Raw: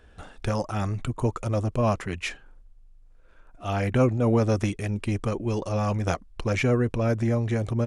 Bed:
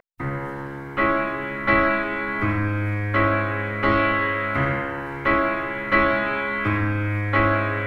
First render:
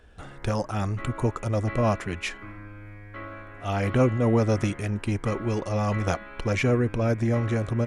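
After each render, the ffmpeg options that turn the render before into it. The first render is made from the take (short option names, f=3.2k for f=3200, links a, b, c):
-filter_complex "[1:a]volume=-19.5dB[a];[0:a][a]amix=inputs=2:normalize=0"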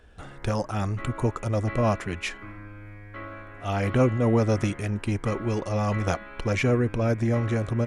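-af anull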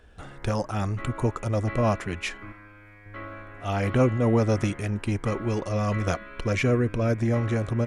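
-filter_complex "[0:a]asettb=1/sr,asplit=3[a][b][c];[a]atrim=end=2.524[d];[b]atrim=start=2.52:end=3.06,asetpts=PTS-STARTPTS,afade=t=in:d=0.004:c=qsin,afade=t=out:st=0.536:d=0.004:c=qsin,lowshelf=f=430:g=-11[e];[c]atrim=start=3.056[f];[d][e]acrossfade=d=0.004:c1=hsin:c2=qsin[g];[g][f]acrossfade=d=0.004:c1=qsin:c2=hsin,asettb=1/sr,asplit=3[h][i][j];[h]atrim=end=5.684[k];[i]atrim=start=5.68:end=7.15,asetpts=PTS-STARTPTS,afade=t=in:d=0.004:c=qsin,afade=t=out:st=1.466:d=0.004:c=qsin,bandreject=f=830:w=5.8[l];[j]atrim=start=7.146[m];[k][l]acrossfade=d=0.004:c1=hsin:c2=qsin[n];[n][m]acrossfade=d=0.004:c1=qsin:c2=hsin"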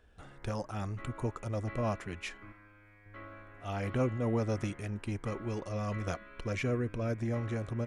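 -af "volume=-9.5dB"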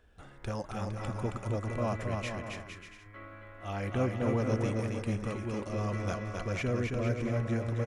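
-af "aecho=1:1:270|459|591.3|683.9|748.7:0.631|0.398|0.251|0.158|0.1"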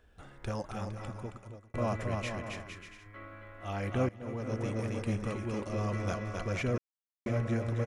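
-filter_complex "[0:a]asplit=5[a][b][c][d][e];[a]atrim=end=1.74,asetpts=PTS-STARTPTS,afade=t=out:st=0.58:d=1.16[f];[b]atrim=start=1.74:end=4.09,asetpts=PTS-STARTPTS,afade=t=in:d=0.004:c=hsin,afade=t=out:st=2.346:d=0.004:c=hsin:silence=0.125893[g];[c]atrim=start=4.09:end=6.78,asetpts=PTS-STARTPTS,afade=t=in:d=0.91:silence=0.125893,afade=t=out:st=2.686:d=0.004:c=hsin[h];[d]atrim=start=6.78:end=7.26,asetpts=PTS-STARTPTS,volume=0[i];[e]atrim=start=7.26,asetpts=PTS-STARTPTS,afade=t=in:d=0.004:c=hsin[j];[f][g][h][i][j]concat=n=5:v=0:a=1"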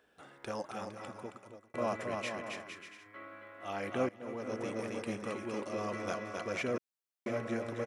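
-af "highpass=260,bandreject=f=6.7k:w=23"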